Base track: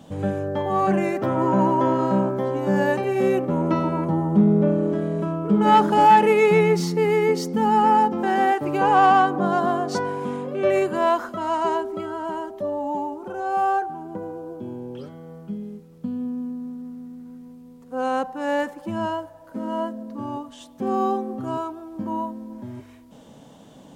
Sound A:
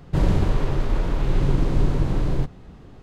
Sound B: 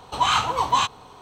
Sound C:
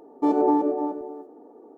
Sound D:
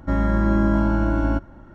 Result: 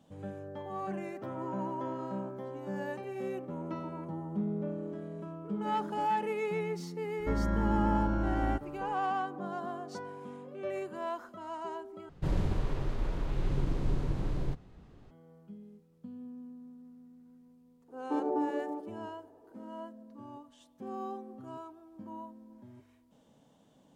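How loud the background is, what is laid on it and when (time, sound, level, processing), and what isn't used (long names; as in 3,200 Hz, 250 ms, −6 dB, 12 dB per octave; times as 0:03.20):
base track −17 dB
0:07.19: mix in D −10.5 dB
0:12.09: overwrite with A −11 dB
0:17.88: mix in C −11.5 dB
not used: B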